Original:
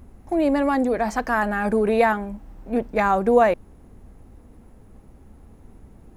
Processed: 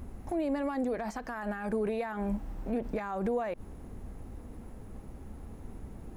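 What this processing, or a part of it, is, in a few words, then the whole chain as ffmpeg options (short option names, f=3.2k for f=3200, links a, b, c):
de-esser from a sidechain: -filter_complex "[0:a]asplit=2[a][b];[b]highpass=f=5.3k:p=1,apad=whole_len=271739[c];[a][c]sidechaincompress=threshold=-53dB:ratio=4:attack=1.4:release=59,volume=2.5dB"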